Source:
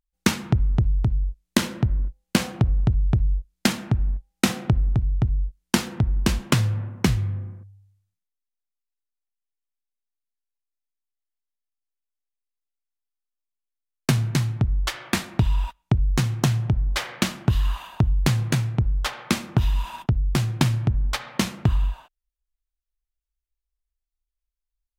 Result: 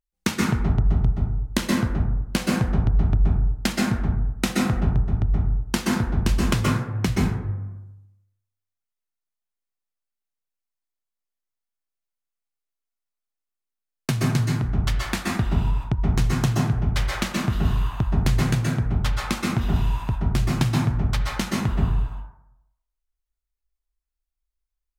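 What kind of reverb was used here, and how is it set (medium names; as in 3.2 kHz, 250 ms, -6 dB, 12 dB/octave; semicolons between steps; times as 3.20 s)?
plate-style reverb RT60 0.8 s, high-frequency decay 0.35×, pre-delay 115 ms, DRR -3 dB; trim -4 dB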